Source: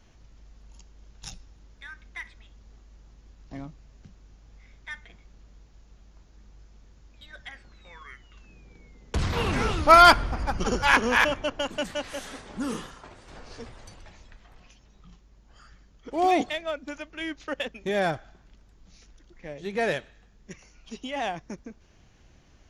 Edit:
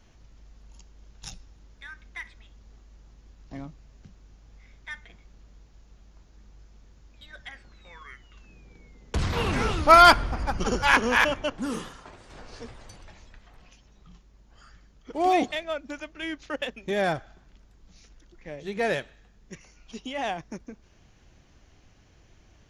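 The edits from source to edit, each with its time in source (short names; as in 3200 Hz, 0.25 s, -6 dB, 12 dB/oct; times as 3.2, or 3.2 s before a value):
11.58–12.56 cut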